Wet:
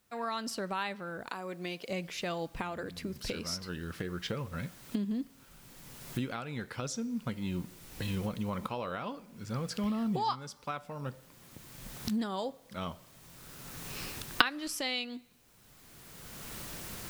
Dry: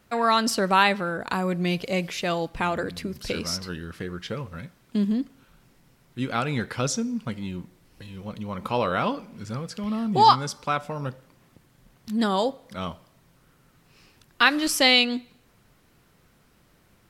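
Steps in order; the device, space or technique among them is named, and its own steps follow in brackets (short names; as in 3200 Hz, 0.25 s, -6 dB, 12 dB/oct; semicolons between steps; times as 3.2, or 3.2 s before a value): 1.29–1.89 HPF 290 Hz 12 dB/oct; cheap recorder with automatic gain (white noise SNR 32 dB; recorder AGC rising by 20 dB/s); gain -16.5 dB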